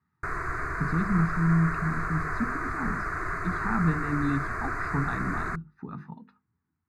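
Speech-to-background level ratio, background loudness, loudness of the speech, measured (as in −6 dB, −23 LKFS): 2.0 dB, −32.0 LKFS, −30.0 LKFS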